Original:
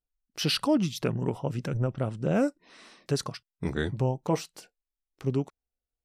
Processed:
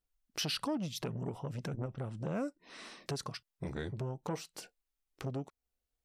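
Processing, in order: compression 3:1, threshold -38 dBFS, peak gain reduction 13.5 dB; transformer saturation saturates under 690 Hz; trim +2.5 dB

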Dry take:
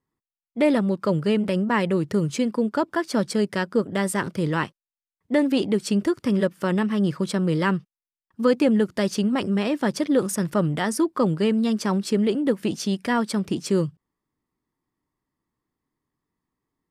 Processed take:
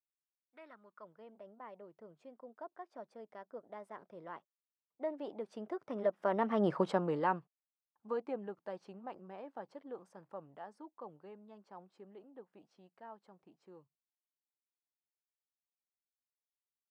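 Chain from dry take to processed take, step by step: Doppler pass-by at 6.74 s, 20 m/s, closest 4 m; band-pass sweep 1.8 kHz -> 760 Hz, 0.35–1.36 s; trim +8 dB

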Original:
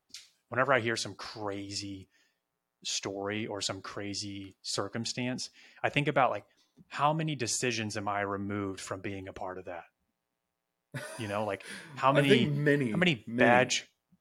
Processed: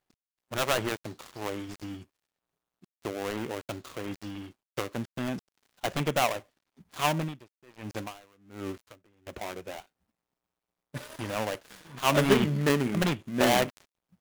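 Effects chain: dead-time distortion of 0.28 ms; 7.19–9.27 s: logarithmic tremolo 1.3 Hz, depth 30 dB; trim +2.5 dB

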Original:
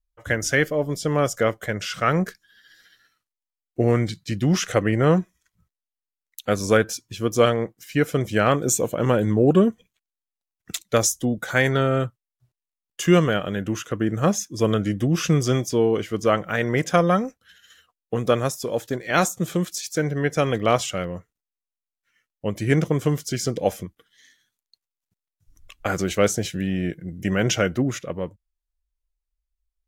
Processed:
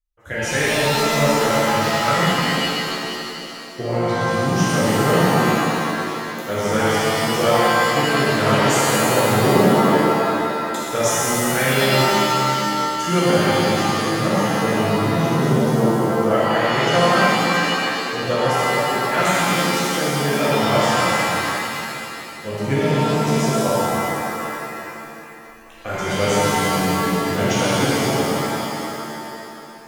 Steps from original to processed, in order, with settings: time-frequency box 14.32–16.31 s, 720–9200 Hz -9 dB; pitch-shifted reverb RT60 2.8 s, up +7 st, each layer -2 dB, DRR -9.5 dB; trim -8 dB

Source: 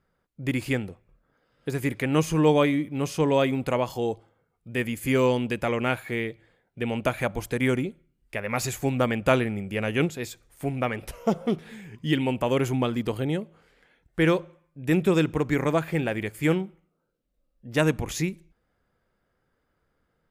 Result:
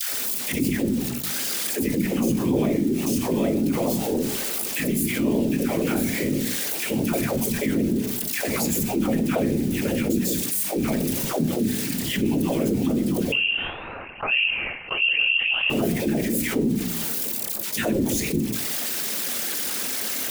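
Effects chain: zero-crossing glitches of -18.5 dBFS; phase dispersion lows, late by 146 ms, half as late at 590 Hz; whisper effect; peaking EQ 240 Hz +14.5 dB 1.6 oct; 13.32–15.70 s: frequency inversion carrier 3 kHz; peaking EQ 1.2 kHz -4.5 dB 0.84 oct; gated-style reverb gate 150 ms falling, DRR 11.5 dB; flange 0.43 Hz, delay 9.2 ms, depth 10 ms, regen -90%; de-hum 61.3 Hz, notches 7; gate with hold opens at -29 dBFS; level flattener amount 70%; trim -9 dB

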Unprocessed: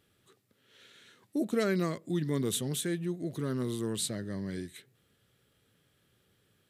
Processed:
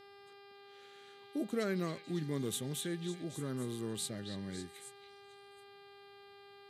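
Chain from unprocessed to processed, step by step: mains buzz 400 Hz, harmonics 13, -51 dBFS -5 dB/octave; repeats whose band climbs or falls 276 ms, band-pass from 3.3 kHz, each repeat 0.7 oct, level -5 dB; trim -6 dB

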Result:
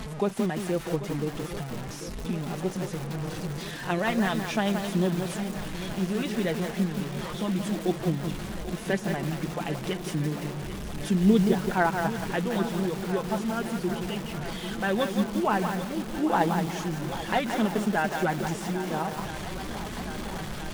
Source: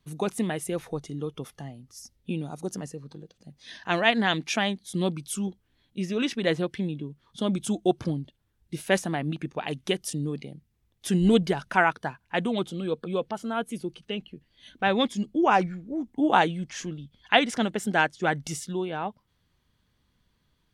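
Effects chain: one-bit delta coder 64 kbps, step -32 dBFS; treble shelf 2.6 kHz -9.5 dB; in parallel at +2 dB: compression 6:1, threshold -36 dBFS, peak gain reduction 19 dB; on the sum: flange 0.45 Hz, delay 4.5 ms, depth 2 ms, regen +28%; shuffle delay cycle 1317 ms, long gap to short 1.5:1, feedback 68%, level -13.5 dB; bit-crushed delay 174 ms, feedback 35%, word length 6-bit, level -5 dB

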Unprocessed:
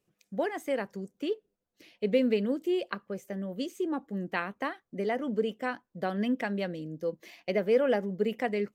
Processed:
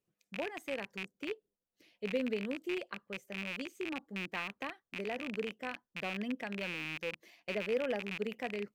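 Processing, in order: rattle on loud lows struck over -46 dBFS, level -19 dBFS; trim -9 dB

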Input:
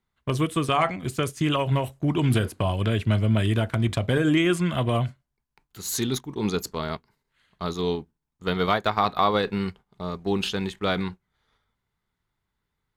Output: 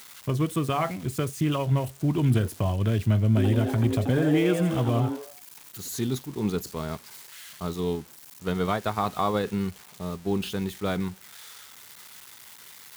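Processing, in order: zero-crossing glitches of -23.5 dBFS; high-pass 74 Hz; tilt EQ -2 dB/octave; 3.28–5.88 s: frequency-shifting echo 84 ms, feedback 33%, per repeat +150 Hz, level -7 dB; trim -5 dB

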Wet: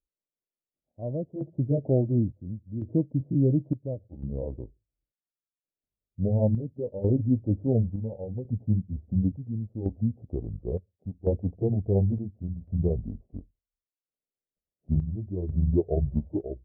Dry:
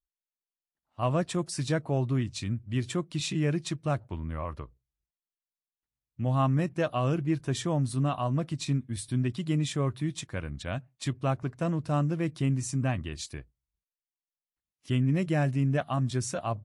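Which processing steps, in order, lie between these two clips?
pitch bend over the whole clip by -9.5 st starting unshifted; steep low-pass 620 Hz 48 dB/octave; bass shelf 120 Hz -6 dB; square tremolo 0.71 Hz, depth 65%, duty 65%; trim +7.5 dB

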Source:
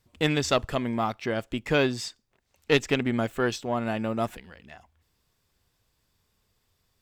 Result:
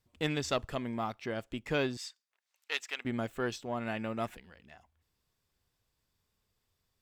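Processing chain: 1.97–3.05 s: high-pass 1.1 kHz 12 dB/octave; 3.80–4.34 s: peaking EQ 2.1 kHz +6.5 dB 1.1 oct; trim -8 dB

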